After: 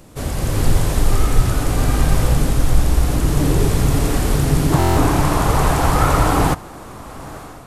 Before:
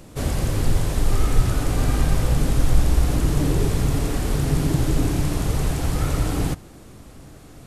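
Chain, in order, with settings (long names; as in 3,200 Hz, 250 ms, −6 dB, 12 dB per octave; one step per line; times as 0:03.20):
parametric band 1,000 Hz +2.5 dB 1.6 octaves, from 0:04.72 +14 dB
automatic gain control gain up to 10 dB
high-shelf EQ 8,800 Hz +4 dB
buffer that repeats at 0:04.78, samples 1,024, times 7
level −1 dB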